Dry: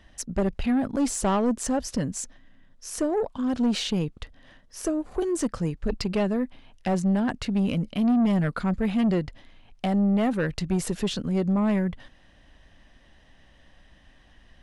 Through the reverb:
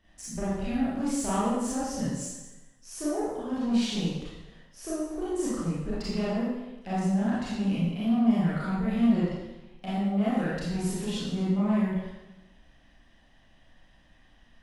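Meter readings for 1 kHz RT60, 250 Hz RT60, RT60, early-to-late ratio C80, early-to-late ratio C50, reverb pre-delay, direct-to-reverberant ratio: 0.95 s, 1.0 s, 1.0 s, 1.0 dB, −2.5 dB, 26 ms, −9.5 dB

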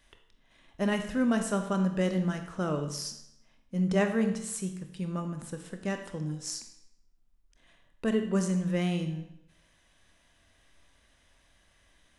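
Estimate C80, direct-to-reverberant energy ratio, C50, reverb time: 11.0 dB, 6.0 dB, 8.5 dB, 0.75 s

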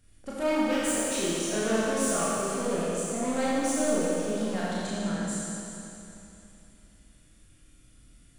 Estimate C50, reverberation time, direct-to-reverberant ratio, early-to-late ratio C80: −4.5 dB, 3.0 s, −8.5 dB, −2.5 dB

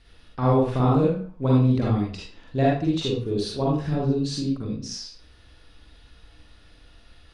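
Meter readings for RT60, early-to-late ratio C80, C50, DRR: 0.45 s, 5.0 dB, −1.5 dB, −5.0 dB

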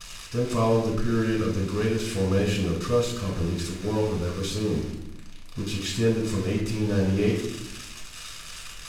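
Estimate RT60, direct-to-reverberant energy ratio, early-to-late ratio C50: 0.85 s, −2.5 dB, 4.5 dB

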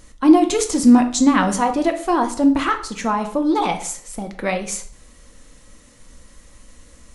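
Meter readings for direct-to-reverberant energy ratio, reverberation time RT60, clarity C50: 5.5 dB, 0.55 s, 11.5 dB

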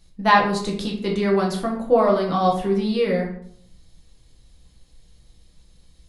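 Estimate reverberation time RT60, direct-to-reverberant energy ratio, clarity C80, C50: 0.65 s, −1.5 dB, 10.0 dB, 6.5 dB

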